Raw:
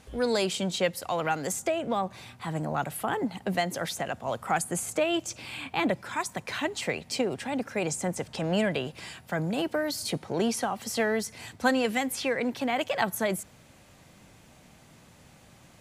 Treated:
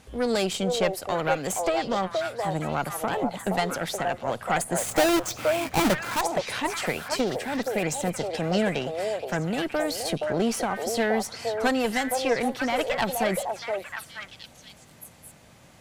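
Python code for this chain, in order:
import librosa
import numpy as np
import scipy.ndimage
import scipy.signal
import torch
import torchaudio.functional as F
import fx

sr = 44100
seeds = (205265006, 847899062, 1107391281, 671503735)

y = fx.halfwave_hold(x, sr, at=(4.78, 6.21))
y = fx.tube_stage(y, sr, drive_db=21.0, bias=0.7)
y = fx.echo_stepped(y, sr, ms=472, hz=620.0, octaves=1.4, feedback_pct=70, wet_db=-0.5)
y = F.gain(torch.from_numpy(y), 5.0).numpy()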